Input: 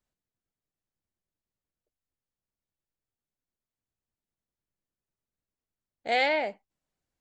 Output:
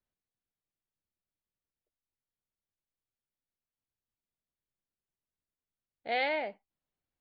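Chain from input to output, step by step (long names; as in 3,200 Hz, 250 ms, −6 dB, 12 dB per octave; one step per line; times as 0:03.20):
inverse Chebyshev low-pass filter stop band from 7,900 Hz, stop band 40 dB
level −5.5 dB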